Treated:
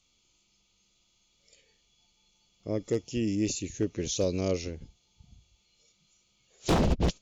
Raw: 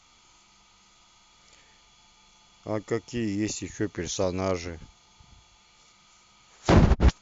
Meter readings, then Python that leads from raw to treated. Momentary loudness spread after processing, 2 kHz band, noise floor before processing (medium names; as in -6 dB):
11 LU, -6.5 dB, -59 dBFS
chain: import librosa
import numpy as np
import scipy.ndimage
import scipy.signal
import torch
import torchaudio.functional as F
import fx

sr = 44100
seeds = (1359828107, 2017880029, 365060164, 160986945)

y = fx.noise_reduce_blind(x, sr, reduce_db=10)
y = fx.band_shelf(y, sr, hz=1200.0, db=-12.5, octaves=1.7)
y = 10.0 ** (-17.5 / 20.0) * (np.abs((y / 10.0 ** (-17.5 / 20.0) + 3.0) % 4.0 - 2.0) - 1.0)